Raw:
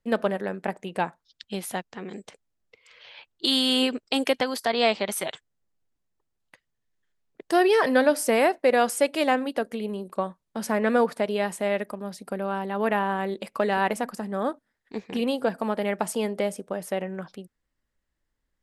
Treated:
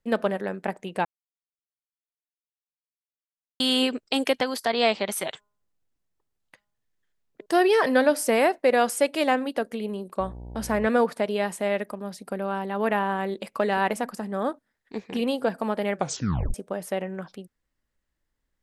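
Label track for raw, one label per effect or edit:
1.050000	3.600000	mute
5.300000	7.460000	de-hum 206.2 Hz, notches 7
10.190000	10.860000	mains buzz 60 Hz, harmonics 16, -39 dBFS -7 dB/octave
15.950000	15.950000	tape stop 0.59 s

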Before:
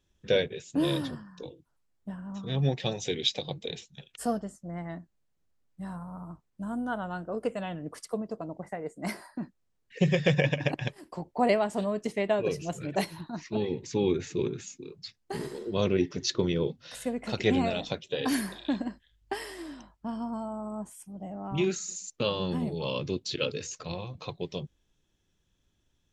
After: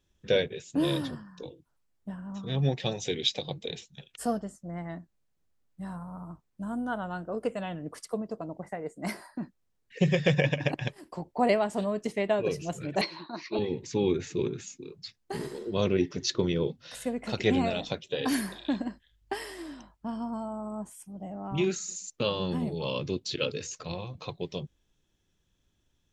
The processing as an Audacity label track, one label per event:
13.010000	13.590000	cabinet simulation 300–5500 Hz, peaks and dips at 340 Hz +7 dB, 560 Hz +4 dB, 1.1 kHz +7 dB, 2.3 kHz +8 dB, 4.3 kHz +10 dB

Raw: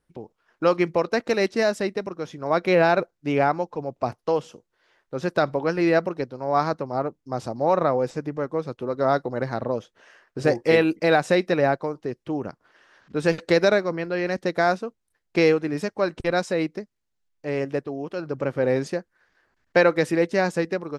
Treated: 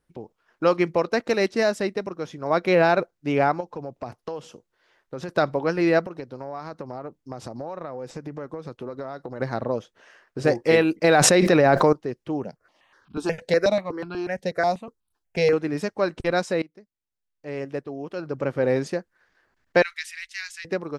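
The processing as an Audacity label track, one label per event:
3.600000	5.290000	compression, threshold -28 dBFS
6.000000	9.400000	compression 12:1, threshold -29 dBFS
11.040000	11.930000	level flattener amount 100%
12.440000	15.530000	stepped phaser 8.2 Hz 320–1900 Hz
16.620000	18.500000	fade in, from -22.5 dB
19.820000	20.650000	inverse Chebyshev band-stop 110–540 Hz, stop band 70 dB

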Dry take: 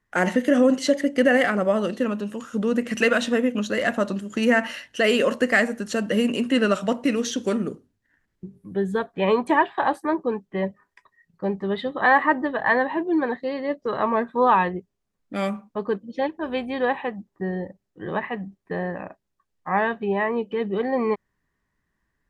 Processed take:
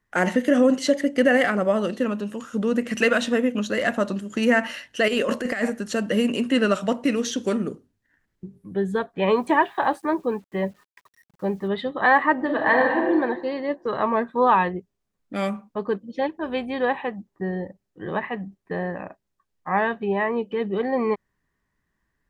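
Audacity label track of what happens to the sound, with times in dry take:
5.080000	5.700000	compressor with a negative ratio -22 dBFS, ratio -0.5
9.360000	11.680000	word length cut 10-bit, dither none
12.330000	13.110000	reverb throw, RT60 1.4 s, DRR 1 dB

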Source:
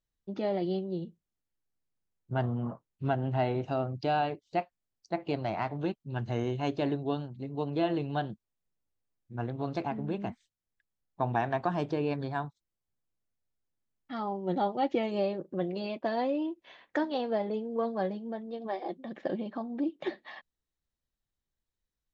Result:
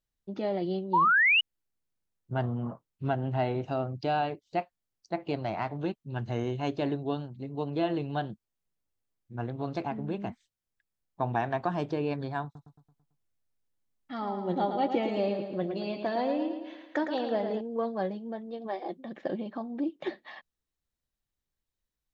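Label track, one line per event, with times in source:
0.930000	1.410000	painted sound rise 890–3000 Hz -22 dBFS
12.440000	17.610000	feedback delay 111 ms, feedback 51%, level -7 dB

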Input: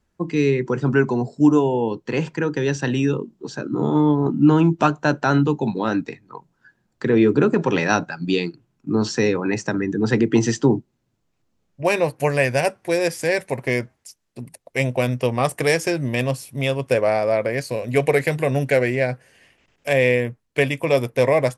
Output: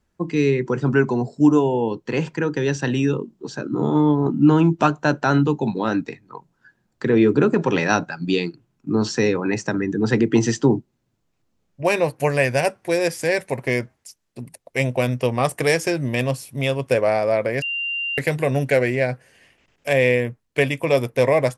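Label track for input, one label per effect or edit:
17.620000	18.180000	bleep 2.78 kHz -22.5 dBFS

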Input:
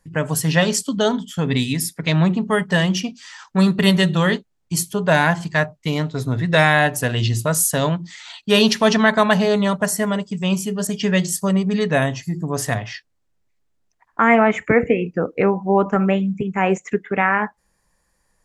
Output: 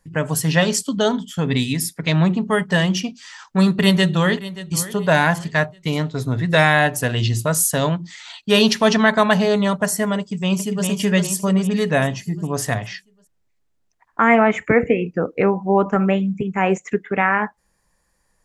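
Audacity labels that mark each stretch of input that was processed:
3.770000	4.800000	echo throw 580 ms, feedback 35%, level -16 dB
10.190000	10.870000	echo throw 400 ms, feedback 50%, level -4.5 dB

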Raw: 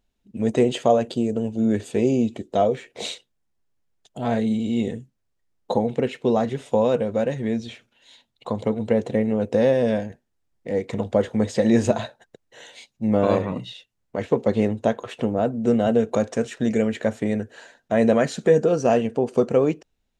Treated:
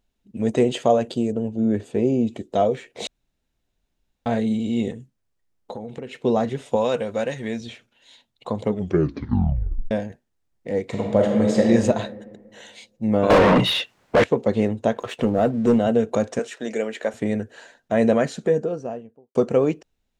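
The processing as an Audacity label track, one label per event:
1.320000	2.270000	treble shelf 2.1 kHz -10.5 dB
3.070000	4.260000	room tone
4.910000	6.170000	compression 4:1, threshold -31 dBFS
6.760000	7.610000	tilt shelf lows -5.5 dB, about 780 Hz
8.660000	8.660000	tape stop 1.25 s
10.830000	11.660000	reverb throw, RT60 1.6 s, DRR 0.5 dB
13.300000	14.240000	overdrive pedal drive 37 dB, tone 1.6 kHz, clips at -6 dBFS
14.960000	15.790000	waveshaping leveller passes 1
16.390000	17.140000	high-pass 390 Hz
18.020000	19.350000	studio fade out

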